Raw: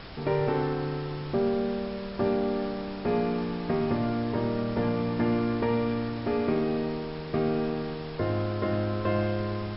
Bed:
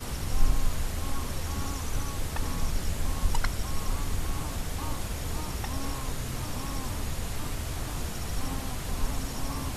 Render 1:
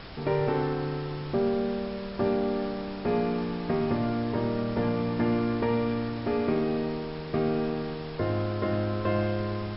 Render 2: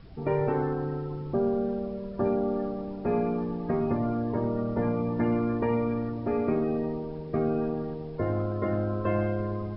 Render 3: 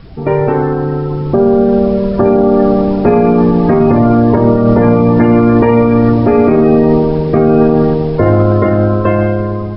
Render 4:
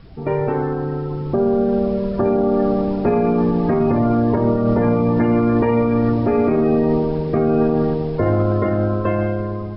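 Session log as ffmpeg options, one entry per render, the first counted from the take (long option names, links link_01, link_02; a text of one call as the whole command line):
ffmpeg -i in.wav -af anull out.wav
ffmpeg -i in.wav -af "afftdn=noise_reduction=17:noise_floor=-36" out.wav
ffmpeg -i in.wav -af "dynaudnorm=framelen=220:gausssize=13:maxgain=10dB,alimiter=level_in=14dB:limit=-1dB:release=50:level=0:latency=1" out.wav
ffmpeg -i in.wav -af "volume=-8dB" out.wav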